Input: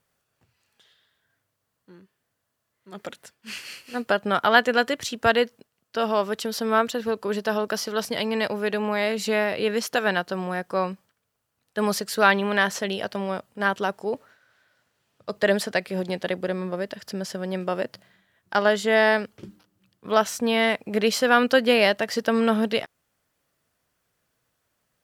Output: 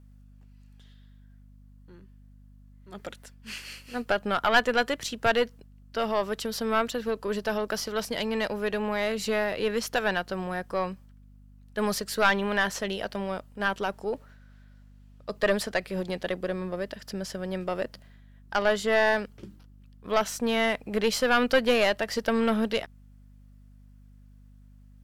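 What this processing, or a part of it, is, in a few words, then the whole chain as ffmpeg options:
valve amplifier with mains hum: -af "aeval=exprs='(tanh(2.51*val(0)+0.6)-tanh(0.6))/2.51':channel_layout=same,aeval=exprs='val(0)+0.00282*(sin(2*PI*50*n/s)+sin(2*PI*2*50*n/s)/2+sin(2*PI*3*50*n/s)/3+sin(2*PI*4*50*n/s)/4+sin(2*PI*5*50*n/s)/5)':channel_layout=same"

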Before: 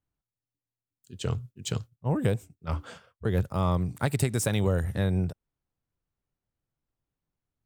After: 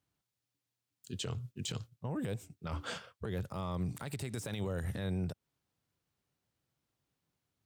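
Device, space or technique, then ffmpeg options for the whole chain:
broadcast voice chain: -af "highpass=90,deesser=0.7,acompressor=threshold=-35dB:ratio=5,equalizer=frequency=4000:width_type=o:width=1.9:gain=4.5,alimiter=level_in=8dB:limit=-24dB:level=0:latency=1:release=59,volume=-8dB,volume=4dB"

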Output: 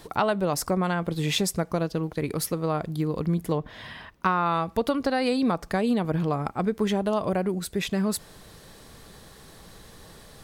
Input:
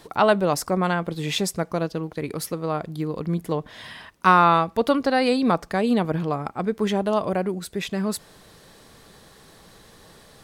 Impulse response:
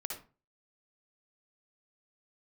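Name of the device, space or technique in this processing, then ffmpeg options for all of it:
ASMR close-microphone chain: -filter_complex "[0:a]lowshelf=frequency=110:gain=7.5,acompressor=threshold=-20dB:ratio=6,highshelf=frequency=9200:gain=4,asettb=1/sr,asplit=3[link_01][link_02][link_03];[link_01]atrim=end=3.584[link_04];[link_02]atrim=start=3.58:end=4.46,asetpts=PTS-STARTPTS,afade=type=in:duration=0.004:curve=qsin,afade=type=out:start_time=0.876:duration=0.004:curve=qsin,equalizer=frequency=10000:width=0.52:gain=-11.5[link_05];[link_03]atrim=start=4.456[link_06];[link_04][link_05]acrossfade=duration=0.004:curve1=hsin:curve2=qsin[link_07];[link_07][link_06]acrossfade=duration=0.004:curve1=qsin:curve2=hsin"

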